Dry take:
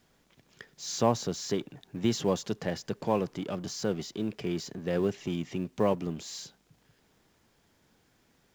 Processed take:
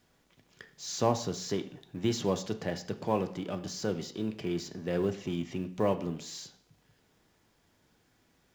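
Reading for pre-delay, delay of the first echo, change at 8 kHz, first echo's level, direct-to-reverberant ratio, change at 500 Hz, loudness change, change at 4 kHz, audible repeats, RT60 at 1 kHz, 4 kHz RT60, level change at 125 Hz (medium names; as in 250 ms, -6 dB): 3 ms, no echo, -2.0 dB, no echo, 8.0 dB, -1.5 dB, -1.5 dB, -1.5 dB, no echo, 0.55 s, 0.55 s, -1.0 dB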